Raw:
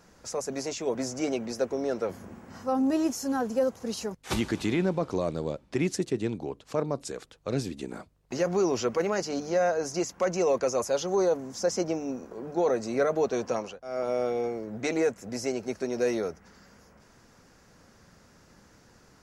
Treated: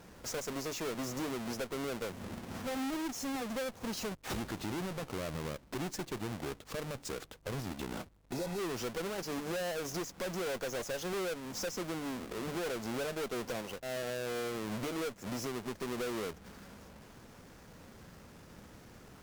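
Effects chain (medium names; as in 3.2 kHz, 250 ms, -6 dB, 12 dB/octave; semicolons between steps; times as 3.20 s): square wave that keeps the level; compression 5:1, threshold -32 dBFS, peak gain reduction 12.5 dB; valve stage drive 33 dB, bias 0.45; spectral replace 8.35–8.56 s, 810–3700 Hz before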